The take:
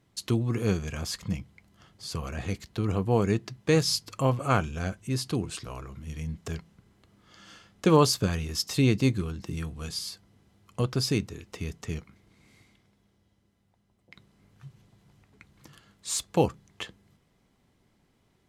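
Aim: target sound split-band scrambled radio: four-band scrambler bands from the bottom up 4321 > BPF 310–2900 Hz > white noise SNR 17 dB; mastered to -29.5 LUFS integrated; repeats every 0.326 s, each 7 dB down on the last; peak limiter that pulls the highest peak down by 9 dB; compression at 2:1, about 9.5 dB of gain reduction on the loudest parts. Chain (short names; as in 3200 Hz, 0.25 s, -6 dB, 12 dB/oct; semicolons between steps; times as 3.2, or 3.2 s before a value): compressor 2:1, threshold -33 dBFS; limiter -25.5 dBFS; feedback echo 0.326 s, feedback 45%, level -7 dB; four-band scrambler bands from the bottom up 4321; BPF 310–2900 Hz; white noise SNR 17 dB; gain +12.5 dB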